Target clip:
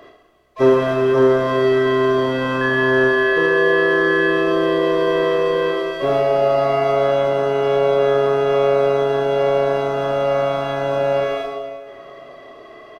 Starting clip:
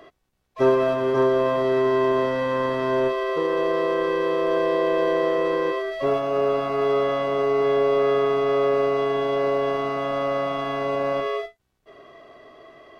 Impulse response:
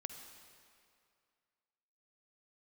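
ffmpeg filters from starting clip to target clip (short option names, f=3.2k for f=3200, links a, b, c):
-filter_complex "[0:a]asettb=1/sr,asplit=3[a][b][c];[a]atrim=end=2.614[d];[b]atrim=start=2.61:end=4.3,asetpts=PTS-STARTPTS,afade=t=in:d=0.004:c=qsin,afade=t=out:st=1.686:d=0.004:c=qsin,aeval=exprs='val(0)+0.0501*sin(2*PI*1700*n/s)':c=same[e];[c]atrim=start=4.296[f];[d][e]acrossfade=d=0.004:c1=hsin:c2=qsin[g];[g][f]acrossfade=d=0.004:c1=qsin:c2=hsin,aecho=1:1:30|72|130.8|213.1|328.4:0.631|0.398|0.251|0.158|0.1[h];[1:a]atrim=start_sample=2205[i];[h][i]afir=irnorm=-1:irlink=0,volume=7dB"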